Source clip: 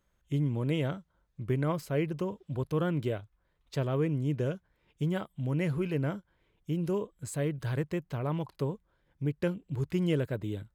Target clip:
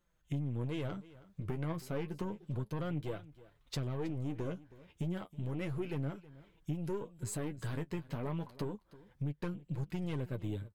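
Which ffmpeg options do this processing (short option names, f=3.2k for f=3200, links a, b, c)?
-filter_complex "[0:a]dynaudnorm=f=190:g=3:m=8dB,aeval=exprs='(tanh(7.94*val(0)+0.45)-tanh(0.45))/7.94':c=same,flanger=delay=5.6:depth=7.1:regen=29:speed=0.31:shape=triangular,acompressor=threshold=-39dB:ratio=3,asplit=2[a][b];[b]aecho=0:1:320:0.112[c];[a][c]amix=inputs=2:normalize=0,volume=1.5dB"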